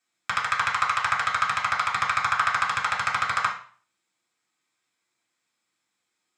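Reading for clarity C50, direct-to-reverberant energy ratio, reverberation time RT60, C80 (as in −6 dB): 7.5 dB, −4.5 dB, 0.45 s, 12.0 dB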